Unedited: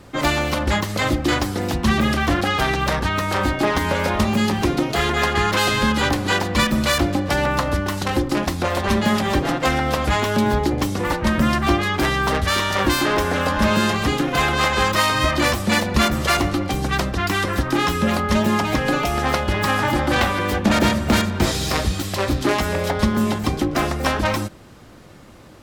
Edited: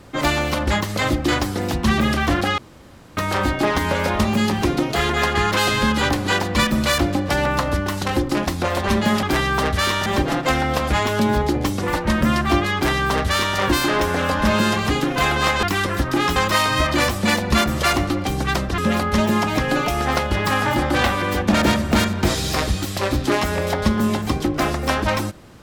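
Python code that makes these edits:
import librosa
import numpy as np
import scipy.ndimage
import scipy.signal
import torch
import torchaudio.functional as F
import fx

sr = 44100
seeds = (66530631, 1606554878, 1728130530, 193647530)

y = fx.edit(x, sr, fx.room_tone_fill(start_s=2.58, length_s=0.59),
    fx.duplicate(start_s=11.92, length_s=0.83, to_s=9.23),
    fx.move(start_s=17.22, length_s=0.73, to_s=14.8), tone=tone)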